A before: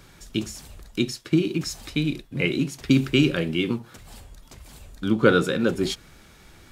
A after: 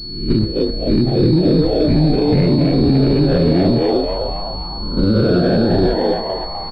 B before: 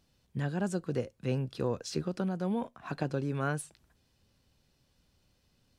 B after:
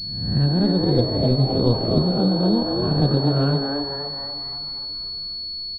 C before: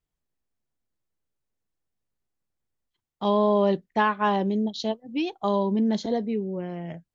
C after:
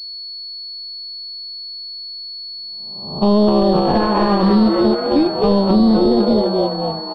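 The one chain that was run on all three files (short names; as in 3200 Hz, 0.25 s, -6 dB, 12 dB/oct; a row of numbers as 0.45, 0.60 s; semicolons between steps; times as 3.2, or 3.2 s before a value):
spectral swells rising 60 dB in 0.82 s; feedback echo 0.549 s, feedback 41%, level -19.5 dB; gate -26 dBFS, range -11 dB; compressor, threshold -21 dBFS; de-hum 65.53 Hz, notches 32; frequency-shifting echo 0.255 s, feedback 55%, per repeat +140 Hz, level -3 dB; soft clip -15 dBFS; vibrato 11 Hz 12 cents; tilt -4.5 dB/oct; limiter -14 dBFS; pulse-width modulation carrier 4400 Hz; normalise peaks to -6 dBFS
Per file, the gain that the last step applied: +8.0, +13.0, +8.0 dB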